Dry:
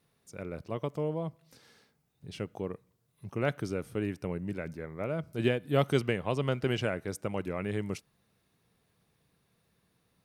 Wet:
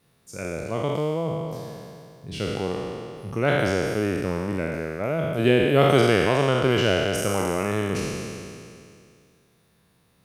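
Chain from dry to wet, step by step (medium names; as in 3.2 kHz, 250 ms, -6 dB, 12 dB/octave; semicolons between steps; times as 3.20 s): spectral sustain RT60 2.41 s; trim +5.5 dB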